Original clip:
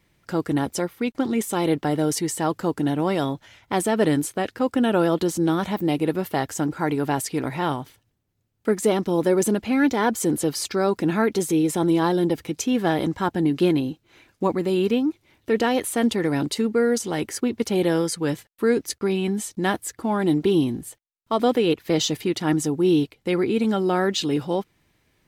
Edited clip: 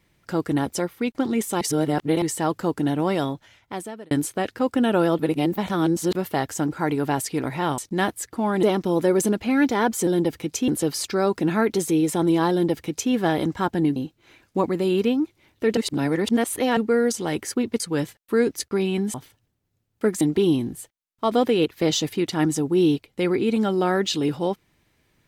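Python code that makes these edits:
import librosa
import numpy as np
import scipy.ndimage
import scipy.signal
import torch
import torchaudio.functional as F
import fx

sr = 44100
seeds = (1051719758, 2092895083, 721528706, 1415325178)

y = fx.edit(x, sr, fx.reverse_span(start_s=1.61, length_s=0.61),
    fx.fade_out_span(start_s=3.16, length_s=0.95),
    fx.reverse_span(start_s=5.19, length_s=0.96),
    fx.swap(start_s=7.78, length_s=1.07, other_s=19.44, other_length_s=0.85),
    fx.duplicate(start_s=12.12, length_s=0.61, to_s=10.29),
    fx.cut(start_s=13.57, length_s=0.25),
    fx.reverse_span(start_s=15.63, length_s=1.0),
    fx.cut(start_s=17.66, length_s=0.44), tone=tone)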